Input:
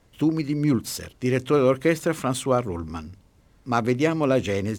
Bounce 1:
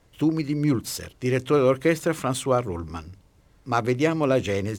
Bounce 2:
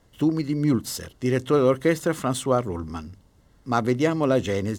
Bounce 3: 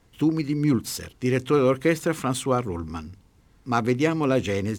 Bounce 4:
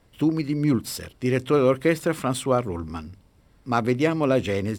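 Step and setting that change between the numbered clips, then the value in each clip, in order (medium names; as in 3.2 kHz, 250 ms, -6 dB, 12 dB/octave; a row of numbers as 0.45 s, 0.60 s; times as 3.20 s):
band-stop, frequency: 230 Hz, 2.4 kHz, 590 Hz, 6.5 kHz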